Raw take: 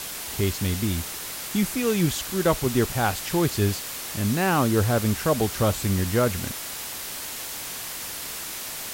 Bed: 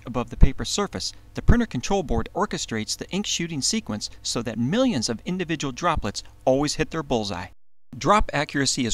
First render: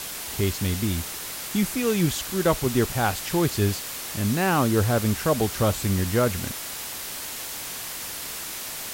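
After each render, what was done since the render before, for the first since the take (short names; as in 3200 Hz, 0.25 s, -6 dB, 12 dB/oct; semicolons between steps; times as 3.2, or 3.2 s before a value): nothing audible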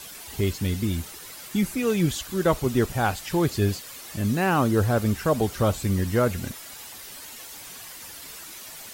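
denoiser 10 dB, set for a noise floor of -35 dBFS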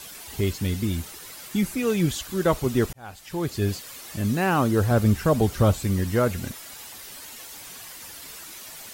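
2.93–3.8 fade in; 4.91–5.74 low shelf 230 Hz +6.5 dB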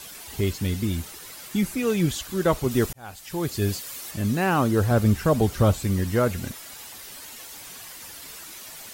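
2.71–4.11 high shelf 5500 Hz +6 dB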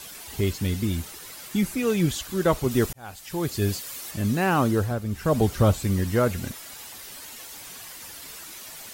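4.7–5.38 dip -10.5 dB, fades 0.29 s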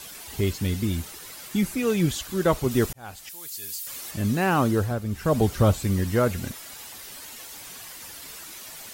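3.29–3.87 pre-emphasis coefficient 0.97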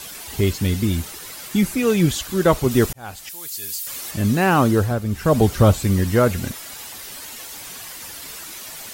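gain +5.5 dB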